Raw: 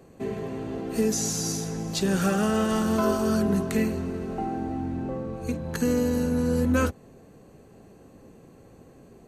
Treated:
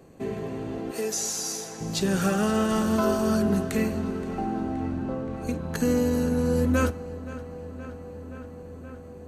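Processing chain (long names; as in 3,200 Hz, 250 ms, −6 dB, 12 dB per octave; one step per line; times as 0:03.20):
0:00.91–0:01.81: high-pass filter 450 Hz 12 dB per octave
feedback echo with a low-pass in the loop 523 ms, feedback 82%, low-pass 4,700 Hz, level −16 dB
feedback delay network reverb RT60 0.7 s, high-frequency decay 0.75×, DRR 18 dB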